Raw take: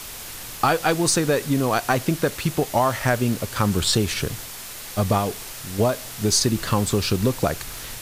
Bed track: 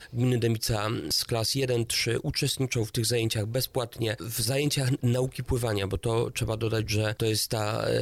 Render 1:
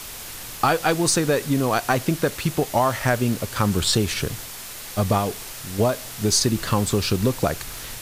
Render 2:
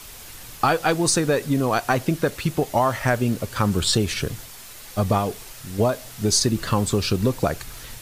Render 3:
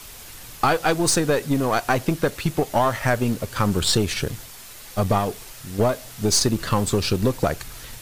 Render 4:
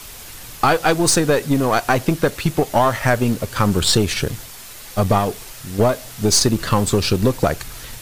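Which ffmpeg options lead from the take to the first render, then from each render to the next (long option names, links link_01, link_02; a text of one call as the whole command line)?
ffmpeg -i in.wav -af anull out.wav
ffmpeg -i in.wav -af "afftdn=noise_reduction=6:noise_floor=-36" out.wav
ffmpeg -i in.wav -af "aeval=exprs='0.531*(cos(1*acos(clip(val(0)/0.531,-1,1)))-cos(1*PI/2))+0.0266*(cos(8*acos(clip(val(0)/0.531,-1,1)))-cos(8*PI/2))':channel_layout=same" out.wav
ffmpeg -i in.wav -af "volume=4dB,alimiter=limit=-2dB:level=0:latency=1" out.wav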